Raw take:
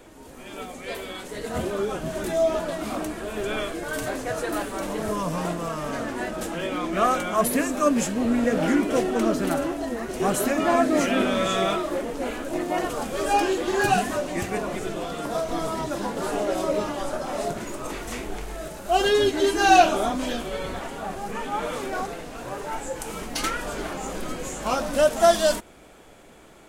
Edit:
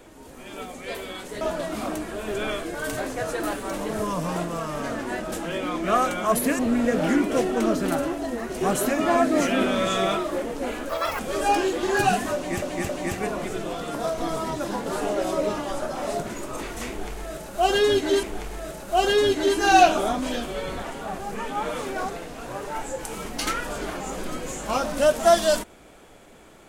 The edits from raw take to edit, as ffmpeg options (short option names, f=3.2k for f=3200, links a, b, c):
-filter_complex "[0:a]asplit=8[a][b][c][d][e][f][g][h];[a]atrim=end=1.412[i];[b]atrim=start=2.498:end=7.682[j];[c]atrim=start=8.178:end=12.484[k];[d]atrim=start=12.48:end=13.04,asetpts=PTS-STARTPTS,asetrate=81585,aresample=44100,atrim=end_sample=13349,asetpts=PTS-STARTPTS[l];[e]atrim=start=13.036:end=14.472[m];[f]atrim=start=14.198:end=14.472[n];[g]atrim=start=14.198:end=19.542[o];[h]atrim=start=18.198[p];[i][j]acrossfade=d=0.004:c1=hsin:c2=hsin[q];[q][k]acrossfade=d=0.004:c1=hsin:c2=hsin[r];[r][l]acrossfade=d=0.004:c1=hsin:c2=hsin[s];[s][m]acrossfade=d=0.004:c1=hsin:c2=hsin[t];[t][n]acrossfade=d=0.004:c1=hsin:c2=hsin[u];[u][o]acrossfade=d=0.004:c1=hsin:c2=hsin[v];[v][p]acrossfade=d=0.004:c1=hsin:c2=hsin"